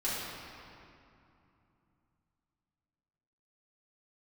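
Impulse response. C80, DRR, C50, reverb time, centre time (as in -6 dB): -1.0 dB, -10.5 dB, -2.5 dB, 2.7 s, 154 ms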